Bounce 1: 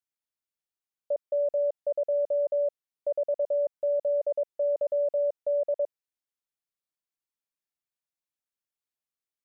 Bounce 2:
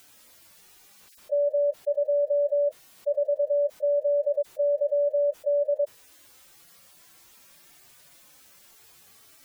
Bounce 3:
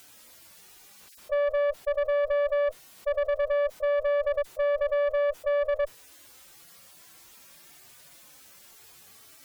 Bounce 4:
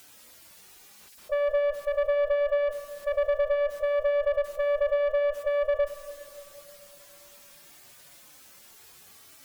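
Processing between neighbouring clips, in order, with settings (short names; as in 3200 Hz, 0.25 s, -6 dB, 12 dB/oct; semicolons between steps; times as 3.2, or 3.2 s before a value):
median-filter separation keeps harmonic; fast leveller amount 70%; gain +2.5 dB
tube stage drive 26 dB, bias 0.45; gain +4 dB
plate-style reverb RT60 3.2 s, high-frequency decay 0.55×, DRR 10 dB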